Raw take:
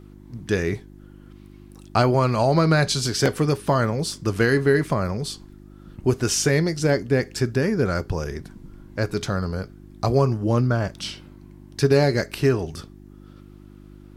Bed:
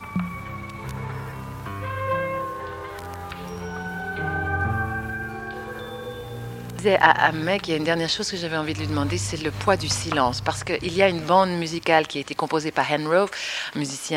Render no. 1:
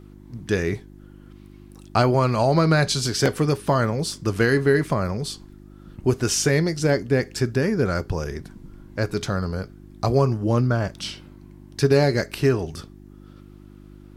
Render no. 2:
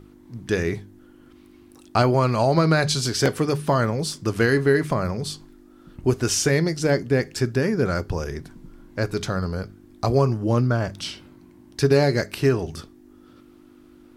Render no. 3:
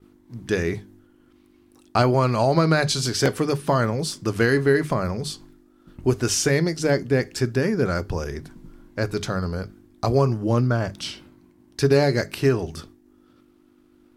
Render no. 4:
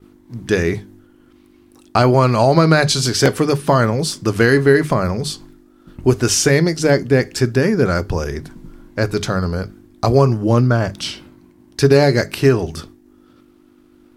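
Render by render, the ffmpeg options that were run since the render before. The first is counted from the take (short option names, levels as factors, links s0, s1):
-af anull
-af "bandreject=f=50:t=h:w=4,bandreject=f=100:t=h:w=4,bandreject=f=150:t=h:w=4,bandreject=f=200:t=h:w=4"
-af "agate=range=0.0224:threshold=0.00708:ratio=3:detection=peak,bandreject=f=50:t=h:w=6,bandreject=f=100:t=h:w=6,bandreject=f=150:t=h:w=6"
-af "volume=2.11,alimiter=limit=0.891:level=0:latency=1"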